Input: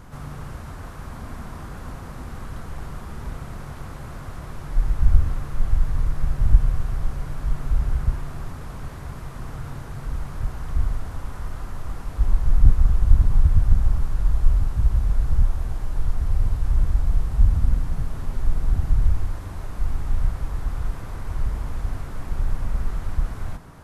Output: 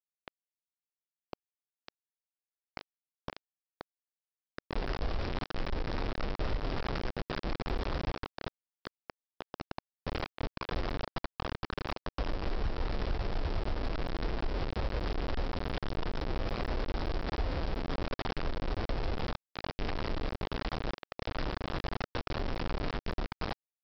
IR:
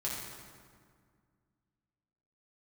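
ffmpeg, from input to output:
-af "aresample=11025,acrusher=bits=3:mix=0:aa=0.000001,aresample=44100,equalizer=frequency=480:width=0.6:gain=5.5,asoftclip=type=tanh:threshold=-6dB,lowshelf=frequency=270:gain=-4,acompressor=threshold=-19dB:ratio=6,volume=-9dB"

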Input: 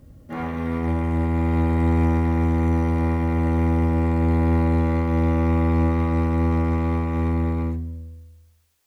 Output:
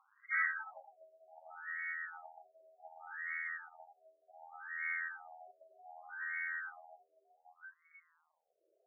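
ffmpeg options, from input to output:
ffmpeg -i in.wav -filter_complex "[0:a]aeval=exprs='val(0)+0.5*0.0376*sgn(val(0))':channel_layout=same,equalizer=frequency=970:width=3.9:gain=4.5,bandreject=frequency=960:width=6.6,lowpass=frequency=2300:width_type=q:width=0.5098,lowpass=frequency=2300:width_type=q:width=0.6013,lowpass=frequency=2300:width_type=q:width=0.9,lowpass=frequency=2300:width_type=q:width=2.563,afreqshift=-2700,afftdn=noise_reduction=27:noise_floor=-29,areverse,acompressor=threshold=-27dB:ratio=12,areverse,highshelf=frequency=2100:gain=-8,acrossover=split=200|1600[link_01][link_02][link_03];[link_03]acompressor=mode=upward:threshold=-46dB:ratio=2.5[link_04];[link_01][link_02][link_04]amix=inputs=3:normalize=0,afftfilt=real='re*between(b*sr/1024,470*pow(1600/470,0.5+0.5*sin(2*PI*0.66*pts/sr))/1.41,470*pow(1600/470,0.5+0.5*sin(2*PI*0.66*pts/sr))*1.41)':imag='im*between(b*sr/1024,470*pow(1600/470,0.5+0.5*sin(2*PI*0.66*pts/sr))/1.41,470*pow(1600/470,0.5+0.5*sin(2*PI*0.66*pts/sr))*1.41)':win_size=1024:overlap=0.75,volume=7.5dB" out.wav

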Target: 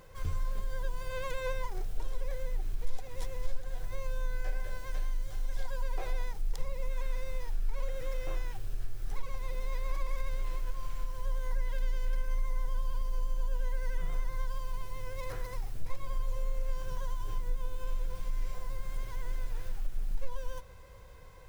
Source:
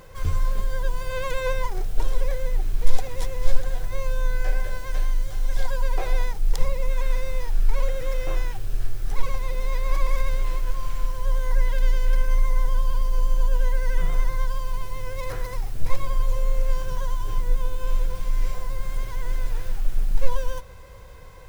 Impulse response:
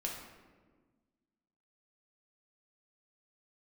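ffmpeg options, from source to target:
-af "acompressor=threshold=-20dB:ratio=2,volume=-8dB"

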